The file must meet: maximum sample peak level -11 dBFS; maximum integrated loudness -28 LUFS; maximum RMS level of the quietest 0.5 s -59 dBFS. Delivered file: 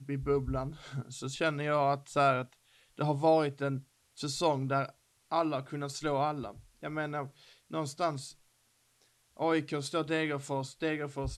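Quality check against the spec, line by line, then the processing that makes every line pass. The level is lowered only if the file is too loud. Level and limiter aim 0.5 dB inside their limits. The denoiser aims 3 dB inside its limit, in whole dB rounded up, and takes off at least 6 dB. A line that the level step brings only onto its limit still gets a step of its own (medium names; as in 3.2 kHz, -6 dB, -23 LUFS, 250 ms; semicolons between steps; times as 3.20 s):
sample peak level -15.0 dBFS: pass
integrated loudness -32.5 LUFS: pass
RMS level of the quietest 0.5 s -71 dBFS: pass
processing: none needed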